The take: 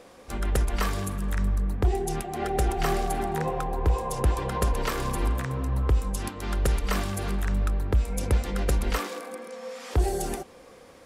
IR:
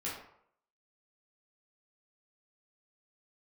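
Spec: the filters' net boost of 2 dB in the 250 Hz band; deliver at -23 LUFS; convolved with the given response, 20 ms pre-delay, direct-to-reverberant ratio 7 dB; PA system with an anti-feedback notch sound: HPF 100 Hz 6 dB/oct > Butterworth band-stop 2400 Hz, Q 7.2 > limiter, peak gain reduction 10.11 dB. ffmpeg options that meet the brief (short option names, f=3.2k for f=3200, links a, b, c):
-filter_complex "[0:a]equalizer=f=250:t=o:g=4,asplit=2[a][b];[1:a]atrim=start_sample=2205,adelay=20[c];[b][c]afir=irnorm=-1:irlink=0,volume=-9.5dB[d];[a][d]amix=inputs=2:normalize=0,highpass=f=100:p=1,asuperstop=centerf=2400:order=8:qfactor=7.2,volume=9.5dB,alimiter=limit=-13.5dB:level=0:latency=1"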